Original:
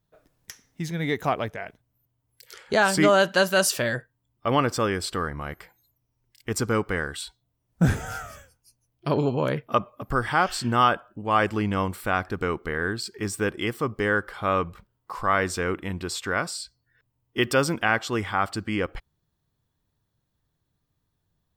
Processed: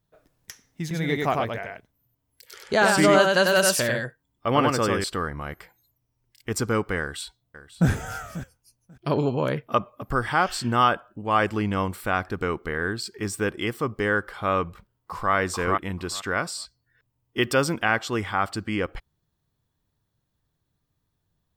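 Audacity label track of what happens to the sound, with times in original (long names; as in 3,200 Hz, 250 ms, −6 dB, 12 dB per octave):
0.810000	5.040000	single-tap delay 96 ms −3 dB
7.000000	7.890000	delay throw 540 ms, feedback 15%, level −14.5 dB
14.680000	15.330000	delay throw 440 ms, feedback 15%, level −2 dB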